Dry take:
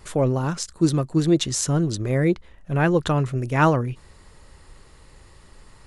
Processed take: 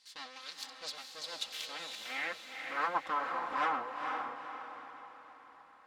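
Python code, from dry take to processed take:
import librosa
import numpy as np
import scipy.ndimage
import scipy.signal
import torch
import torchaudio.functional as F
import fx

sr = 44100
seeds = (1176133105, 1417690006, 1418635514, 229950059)

y = fx.lower_of_two(x, sr, delay_ms=3.8)
y = np.abs(y)
y = fx.filter_sweep_bandpass(y, sr, from_hz=4300.0, to_hz=1100.0, start_s=1.29, end_s=2.98, q=2.9)
y = fx.echo_diffused(y, sr, ms=469, feedback_pct=45, wet_db=-4)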